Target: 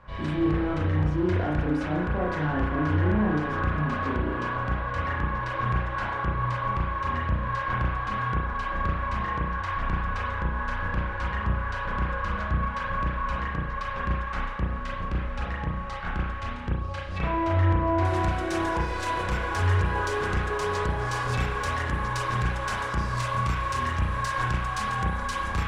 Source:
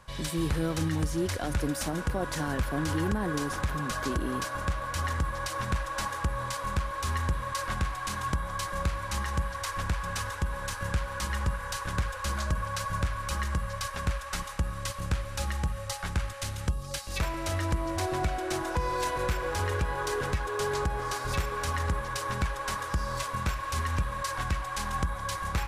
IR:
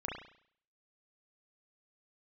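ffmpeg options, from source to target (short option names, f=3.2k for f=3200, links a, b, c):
-filter_complex "[0:a]asetnsamples=n=441:p=0,asendcmd='18.05 lowpass f 8200',lowpass=2.3k,asoftclip=type=tanh:threshold=-26dB[a];[1:a]atrim=start_sample=2205[b];[a][b]afir=irnorm=-1:irlink=0,volume=4.5dB"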